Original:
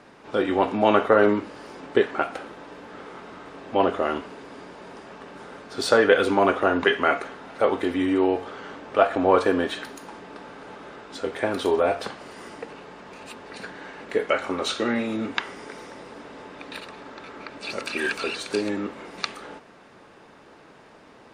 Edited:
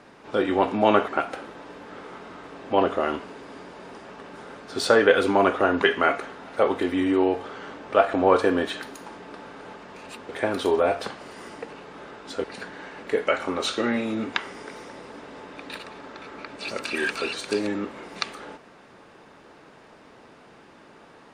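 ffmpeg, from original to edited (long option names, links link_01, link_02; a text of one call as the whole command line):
ffmpeg -i in.wav -filter_complex "[0:a]asplit=6[link_01][link_02][link_03][link_04][link_05][link_06];[link_01]atrim=end=1.082[link_07];[link_02]atrim=start=2.098:end=10.782[link_08];[link_03]atrim=start=12.928:end=13.462[link_09];[link_04]atrim=start=11.288:end=12.932[link_10];[link_05]atrim=start=10.778:end=11.292[link_11];[link_06]atrim=start=13.458[link_12];[link_07][link_08]acrossfade=duration=0.004:curve1=hsin:curve2=hsin[link_13];[link_13][link_09]acrossfade=duration=0.004:curve1=hsin:curve2=hsin[link_14];[link_14][link_10]acrossfade=duration=0.004:curve1=hsin:curve2=hsin[link_15];[link_15][link_11]acrossfade=duration=0.004:curve1=hsin:curve2=hsin[link_16];[link_16][link_12]acrossfade=duration=0.004:curve1=hsin:curve2=hsin" out.wav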